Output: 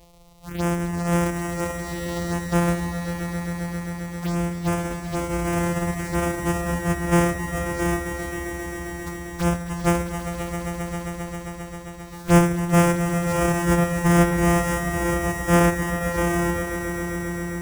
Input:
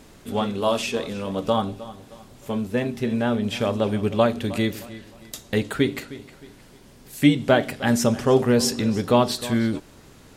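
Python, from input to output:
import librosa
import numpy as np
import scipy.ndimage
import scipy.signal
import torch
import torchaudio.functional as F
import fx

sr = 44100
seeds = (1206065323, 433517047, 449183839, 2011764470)

y = np.r_[np.sort(x[:len(x) // 256 * 256].reshape(-1, 256), axis=1).ravel(), x[len(x) // 256 * 256:]]
y = fx.env_phaser(y, sr, low_hz=230.0, high_hz=4100.0, full_db=-22.5)
y = fx.stretch_vocoder(y, sr, factor=1.7)
y = fx.echo_swell(y, sr, ms=133, loudest=5, wet_db=-11)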